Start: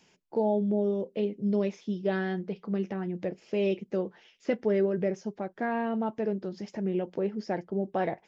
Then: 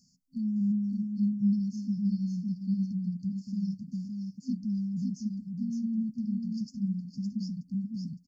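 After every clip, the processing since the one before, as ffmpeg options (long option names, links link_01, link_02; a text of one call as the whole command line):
ffmpeg -i in.wav -filter_complex "[0:a]afftfilt=real='re*(1-between(b*sr/4096,260,4300))':imag='im*(1-between(b*sr/4096,260,4300))':win_size=4096:overlap=0.75,asplit=2[link_01][link_02];[link_02]aecho=0:1:562:0.596[link_03];[link_01][link_03]amix=inputs=2:normalize=0,volume=1.5dB" out.wav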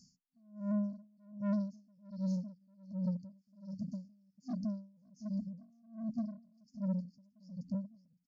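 ffmpeg -i in.wav -af "aresample=16000,asoftclip=type=tanh:threshold=-32dB,aresample=44100,aeval=exprs='val(0)*pow(10,-34*(0.5-0.5*cos(2*PI*1.3*n/s))/20)':channel_layout=same,volume=3dB" out.wav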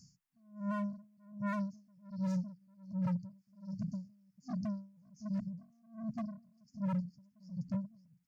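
ffmpeg -i in.wav -af "aeval=exprs='0.0237*(abs(mod(val(0)/0.0237+3,4)-2)-1)':channel_layout=same,equalizer=frequency=125:width_type=o:width=1:gain=10,equalizer=frequency=250:width_type=o:width=1:gain=-8,equalizer=frequency=500:width_type=o:width=1:gain=-8,equalizer=frequency=1000:width_type=o:width=1:gain=4,equalizer=frequency=2000:width_type=o:width=1:gain=4,equalizer=frequency=4000:width_type=o:width=1:gain=-5,volume=3.5dB" out.wav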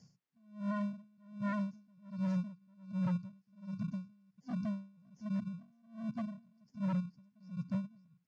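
ffmpeg -i in.wav -filter_complex "[0:a]asplit=2[link_01][link_02];[link_02]acrusher=samples=35:mix=1:aa=0.000001,volume=-11dB[link_03];[link_01][link_03]amix=inputs=2:normalize=0,highpass=110,lowpass=4500,volume=-1dB" out.wav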